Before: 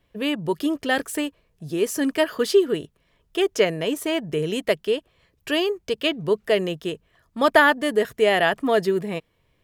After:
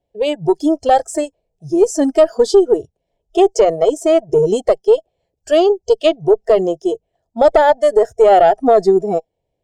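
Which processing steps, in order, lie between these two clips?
drawn EQ curve 250 Hz 0 dB, 800 Hz +12 dB, 1,100 Hz −15 dB, 7,700 Hz +1 dB, 13,000 Hz −22 dB
noise reduction from a noise print of the clip's start 18 dB
in parallel at 0 dB: downward compressor, threshold −19 dBFS, peak gain reduction 16 dB
on the sum: tube saturation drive −1 dB, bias 0.35
boost into a limiter +4.5 dB
level −1 dB

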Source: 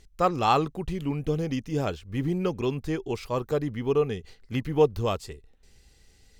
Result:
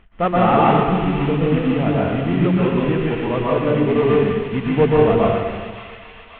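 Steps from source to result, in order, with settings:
variable-slope delta modulation 16 kbit/s
mains-hum notches 50/100/150 Hz
hollow resonant body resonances 210/680 Hz, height 10 dB, ringing for 100 ms
on a send: delay with a high-pass on its return 550 ms, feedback 60%, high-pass 2,000 Hz, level −5 dB
on the sum: dense smooth reverb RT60 1.4 s, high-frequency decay 0.95×, pre-delay 110 ms, DRR −5.5 dB
level +4 dB

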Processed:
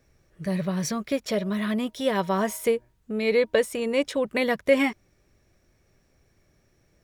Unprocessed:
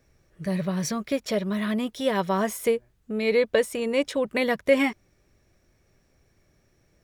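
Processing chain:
0:01.31–0:03.55: hum removal 314.8 Hz, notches 3

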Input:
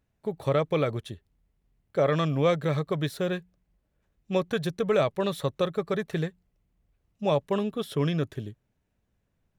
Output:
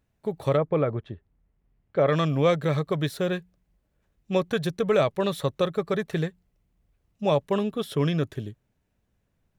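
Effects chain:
0:00.56–0:02.07: low-pass filter 1,300 Hz → 3,100 Hz 12 dB per octave
level +2 dB

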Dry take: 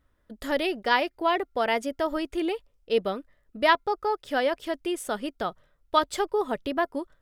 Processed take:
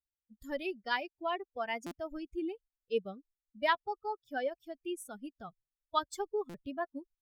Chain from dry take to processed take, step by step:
spectral dynamics exaggerated over time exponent 2
buffer that repeats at 0:01.86/0:03.34/0:06.49, samples 256, times 8
level −6.5 dB

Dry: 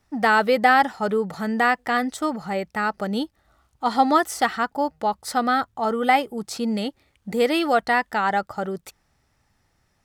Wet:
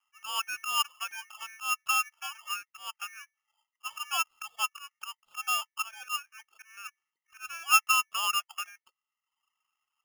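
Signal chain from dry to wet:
hum removal 122.1 Hz, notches 2
reverb reduction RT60 0.86 s
volume swells 189 ms
formant resonators in series a
ring modulator with a square carrier 2,000 Hz
level +2.5 dB

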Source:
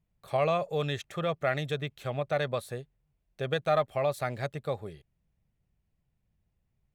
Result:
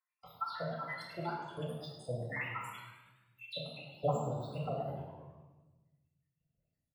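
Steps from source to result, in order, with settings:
time-frequency cells dropped at random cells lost 85%
high-pass filter 130 Hz 6 dB per octave
parametric band 270 Hz −10.5 dB 0.84 octaves
flanger 1.5 Hz, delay 5.8 ms, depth 6.6 ms, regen +69%
parametric band 4,500 Hz −14.5 dB 0.26 octaves
formants moved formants +4 semitones
echo with shifted repeats 104 ms, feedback 56%, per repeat +76 Hz, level −13 dB
rectangular room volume 650 cubic metres, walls mixed, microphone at 2.1 metres
level +2.5 dB

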